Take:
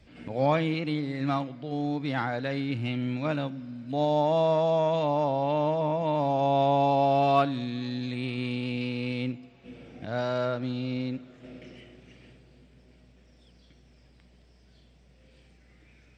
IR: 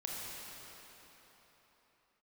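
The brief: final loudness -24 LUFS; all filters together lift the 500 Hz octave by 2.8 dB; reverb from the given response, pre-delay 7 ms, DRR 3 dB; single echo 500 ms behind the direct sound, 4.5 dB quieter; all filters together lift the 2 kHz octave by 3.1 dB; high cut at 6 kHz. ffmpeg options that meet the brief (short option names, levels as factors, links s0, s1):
-filter_complex "[0:a]lowpass=6000,equalizer=f=500:t=o:g=3.5,equalizer=f=2000:t=o:g=4,aecho=1:1:500:0.596,asplit=2[s0][s1];[1:a]atrim=start_sample=2205,adelay=7[s2];[s1][s2]afir=irnorm=-1:irlink=0,volume=0.562[s3];[s0][s3]amix=inputs=2:normalize=0,volume=0.841"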